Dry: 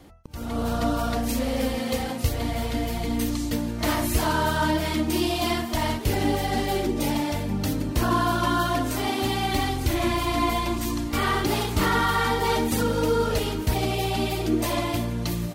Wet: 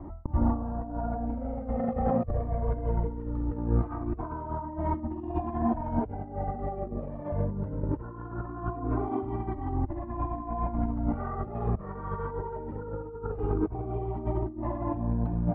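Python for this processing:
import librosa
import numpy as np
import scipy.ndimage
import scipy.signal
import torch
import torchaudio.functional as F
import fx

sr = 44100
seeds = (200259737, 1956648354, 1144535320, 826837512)

y = scipy.signal.sosfilt(scipy.signal.butter(4, 1100.0, 'lowpass', fs=sr, output='sos'), x)
y = fx.over_compress(y, sr, threshold_db=-31.0, ratio=-0.5)
y = fx.comb_cascade(y, sr, direction='falling', hz=0.21)
y = y * librosa.db_to_amplitude(6.0)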